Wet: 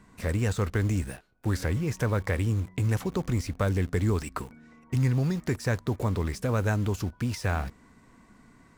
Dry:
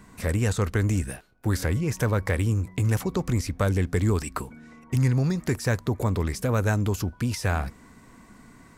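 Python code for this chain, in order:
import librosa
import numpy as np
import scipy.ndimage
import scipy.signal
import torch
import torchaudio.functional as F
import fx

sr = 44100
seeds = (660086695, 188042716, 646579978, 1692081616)

p1 = fx.high_shelf(x, sr, hz=9300.0, db=-9.0)
p2 = fx.quant_dither(p1, sr, seeds[0], bits=6, dither='none')
p3 = p1 + F.gain(torch.from_numpy(p2), -8.0).numpy()
y = F.gain(torch.from_numpy(p3), -5.5).numpy()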